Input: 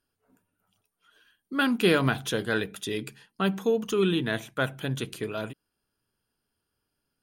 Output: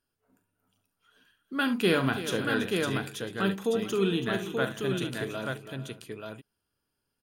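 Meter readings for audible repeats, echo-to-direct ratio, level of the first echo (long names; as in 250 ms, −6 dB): 5, −2.5 dB, −11.5 dB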